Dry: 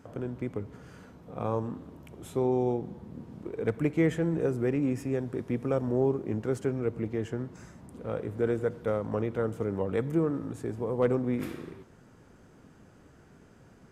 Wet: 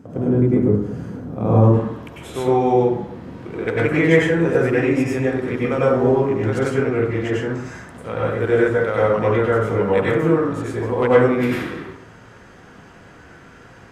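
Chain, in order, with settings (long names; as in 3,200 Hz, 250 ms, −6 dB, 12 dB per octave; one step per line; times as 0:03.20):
parametric band 200 Hz +13 dB 2.9 octaves, from 0:01.64 2,300 Hz
dense smooth reverb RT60 0.64 s, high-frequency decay 0.45×, pre-delay 85 ms, DRR −6.5 dB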